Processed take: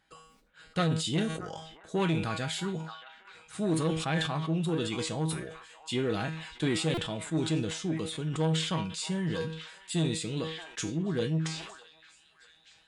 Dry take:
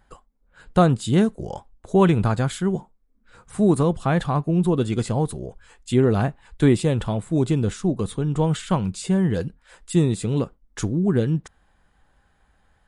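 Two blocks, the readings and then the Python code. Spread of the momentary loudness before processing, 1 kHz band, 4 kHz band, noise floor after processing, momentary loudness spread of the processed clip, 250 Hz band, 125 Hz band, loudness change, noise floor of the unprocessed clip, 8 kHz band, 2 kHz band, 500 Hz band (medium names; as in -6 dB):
9 LU, -9.5 dB, +2.5 dB, -62 dBFS, 11 LU, -10.5 dB, -10.5 dB, -9.5 dB, -63 dBFS, -2.0 dB, -2.5 dB, -10.5 dB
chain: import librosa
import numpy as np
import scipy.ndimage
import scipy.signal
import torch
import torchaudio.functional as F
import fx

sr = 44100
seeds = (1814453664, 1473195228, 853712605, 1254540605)

p1 = fx.low_shelf(x, sr, hz=450.0, db=3.5)
p2 = fx.comb_fb(p1, sr, f0_hz=160.0, decay_s=0.3, harmonics='all', damping=0.0, mix_pct=80)
p3 = 10.0 ** (-18.0 / 20.0) * np.tanh(p2 / 10.0 ** (-18.0 / 20.0))
p4 = fx.weighting(p3, sr, curve='D')
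p5 = p4 + fx.echo_stepped(p4, sr, ms=628, hz=1100.0, octaves=0.7, feedback_pct=70, wet_db=-11.0, dry=0)
p6 = fx.buffer_glitch(p5, sr, at_s=(6.94,), block=128, repeats=10)
p7 = fx.sustainer(p6, sr, db_per_s=60.0)
y = F.gain(torch.from_numpy(p7), -1.0).numpy()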